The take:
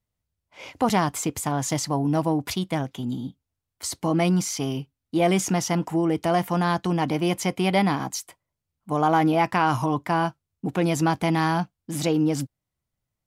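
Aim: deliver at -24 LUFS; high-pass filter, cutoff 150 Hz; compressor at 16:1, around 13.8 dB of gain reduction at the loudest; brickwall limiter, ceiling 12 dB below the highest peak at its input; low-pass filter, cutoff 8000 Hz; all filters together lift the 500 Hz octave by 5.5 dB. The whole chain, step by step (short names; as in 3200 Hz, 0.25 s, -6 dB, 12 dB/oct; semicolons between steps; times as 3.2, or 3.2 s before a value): HPF 150 Hz; LPF 8000 Hz; bell 500 Hz +7.5 dB; compressor 16:1, threshold -26 dBFS; gain +11.5 dB; limiter -13.5 dBFS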